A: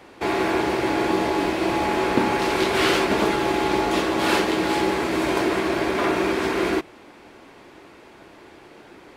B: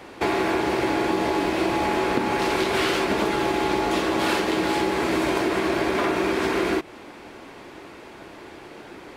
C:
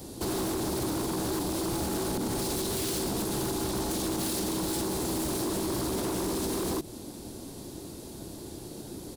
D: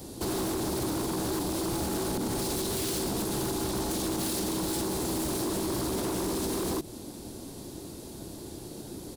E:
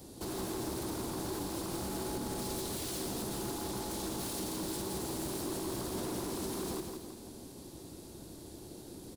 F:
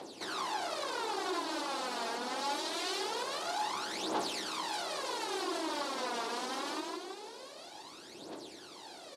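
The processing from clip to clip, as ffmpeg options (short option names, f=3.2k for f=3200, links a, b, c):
-af "acompressor=threshold=-24dB:ratio=6,volume=4.5dB"
-af "firequalizer=gain_entry='entry(120,0);entry(430,-11);entry(1200,-22);entry(2200,-26);entry(3900,-6);entry(10000,8)':delay=0.05:min_phase=1,alimiter=level_in=3.5dB:limit=-24dB:level=0:latency=1:release=79,volume=-3.5dB,aeval=exprs='0.02*(abs(mod(val(0)/0.02+3,4)-2)-1)':c=same,volume=8.5dB"
-af anull
-af "aecho=1:1:167|334|501|668|835:0.531|0.234|0.103|0.0452|0.0199,volume=-8dB"
-af "asoftclip=type=tanh:threshold=-33.5dB,aphaser=in_gain=1:out_gain=1:delay=4.4:decay=0.68:speed=0.24:type=triangular,highpass=700,lowpass=4k,volume=9dB"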